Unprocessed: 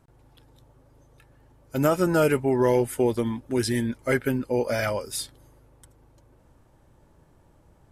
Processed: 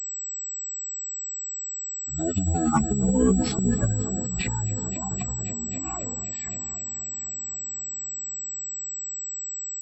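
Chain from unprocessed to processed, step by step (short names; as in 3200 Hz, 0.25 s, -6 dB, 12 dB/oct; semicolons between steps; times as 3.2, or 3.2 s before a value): per-bin expansion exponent 2; Doppler pass-by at 2.76, 15 m/s, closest 8.1 m; notches 50/100/150/200/250/300/350/400/450/500 Hz; reverb removal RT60 1 s; multi-head echo 0.212 s, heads all three, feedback 66%, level -22.5 dB; time stretch by phase-locked vocoder 0.62×; transient shaper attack -10 dB, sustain +10 dB; speed mistake 15 ips tape played at 7.5 ips; pulse-width modulation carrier 7800 Hz; gain +7.5 dB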